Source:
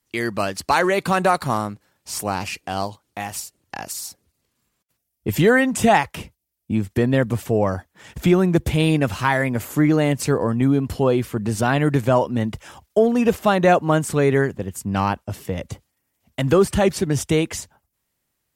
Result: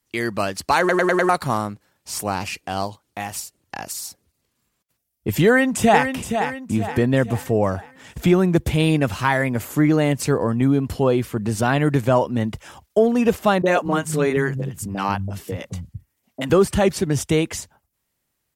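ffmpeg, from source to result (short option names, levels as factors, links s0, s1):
-filter_complex "[0:a]asplit=2[s0][s1];[s1]afade=t=in:st=5.46:d=0.01,afade=t=out:st=6.12:d=0.01,aecho=0:1:470|940|1410|1880|2350:0.421697|0.189763|0.0853935|0.0384271|0.0172922[s2];[s0][s2]amix=inputs=2:normalize=0,asettb=1/sr,asplit=3[s3][s4][s5];[s3]atrim=end=13.624[s6];[s4]atrim=start=13.62:end=16.5,asetpts=PTS-STARTPTS,afade=t=in:d=0.004:c=qsin,afade=t=out:st=2.876:d=0.004:c=qsin,acrossover=split=180|650[s7][s8][s9];[s9]adelay=30[s10];[s7]adelay=230[s11];[s11][s8][s10]amix=inputs=3:normalize=0,atrim=end_sample=127008[s12];[s5]atrim=start=16.496[s13];[s6][s12]acrossfade=d=0.004:c1=hsin:c2=qsin[s14];[s14][s13]acrossfade=d=0.004:c1=qsin:c2=hsin,asplit=6[s15][s16][s17][s18][s19][s20];[s15]atrim=end=0.892[s21];[s16]atrim=start=0.788:end=0.892[s22];[s17]atrim=start=0.788:end=0.892[s23];[s18]atrim=start=0.788:end=0.892[s24];[s19]atrim=start=0.788:end=0.892[s25];[s20]atrim=start=1.288[s26];[s21][s22]acrossfade=d=0.004:c1=hsin:c2=hsin[s27];[s27][s23]acrossfade=d=0.004:c1=hsin:c2=hsin[s28];[s28][s24]acrossfade=d=0.004:c1=hsin:c2=hsin[s29];[s29][s25]acrossfade=d=0.004:c1=hsin:c2=hsin[s30];[s30][s26]acrossfade=d=0.004:c1=hsin:c2=hsin"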